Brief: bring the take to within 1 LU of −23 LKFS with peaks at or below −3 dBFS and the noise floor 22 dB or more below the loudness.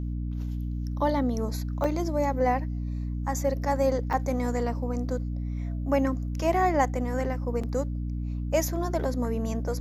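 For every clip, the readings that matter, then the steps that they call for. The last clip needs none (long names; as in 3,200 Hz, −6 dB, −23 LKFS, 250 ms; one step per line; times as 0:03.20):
number of dropouts 3; longest dropout 5.1 ms; mains hum 60 Hz; hum harmonics up to 300 Hz; level of the hum −28 dBFS; integrated loudness −28.5 LKFS; sample peak −11.0 dBFS; target loudness −23.0 LKFS
→ repair the gap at 0:01.84/0:04.13/0:07.63, 5.1 ms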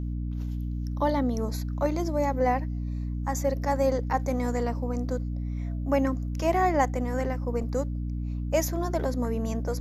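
number of dropouts 0; mains hum 60 Hz; hum harmonics up to 300 Hz; level of the hum −28 dBFS
→ hum removal 60 Hz, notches 5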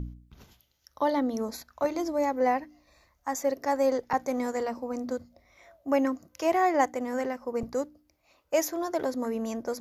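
mains hum none found; integrated loudness −29.5 LKFS; sample peak −11.5 dBFS; target loudness −23.0 LKFS
→ level +6.5 dB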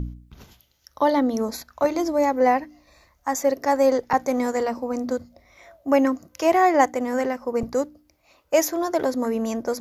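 integrated loudness −23.0 LKFS; sample peak −5.0 dBFS; background noise floor −64 dBFS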